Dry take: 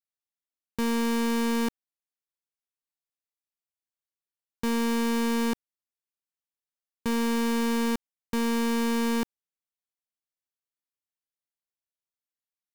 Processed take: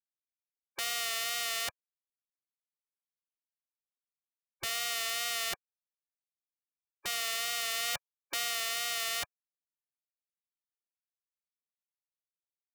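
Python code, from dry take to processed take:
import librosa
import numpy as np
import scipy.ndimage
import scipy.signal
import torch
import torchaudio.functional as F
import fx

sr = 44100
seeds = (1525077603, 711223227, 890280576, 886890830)

p1 = fx.spec_gate(x, sr, threshold_db=-20, keep='weak')
p2 = fx.rider(p1, sr, range_db=10, speed_s=0.5)
p3 = p1 + (p2 * librosa.db_to_amplitude(-2.5))
y = fx.wow_flutter(p3, sr, seeds[0], rate_hz=2.1, depth_cents=32.0)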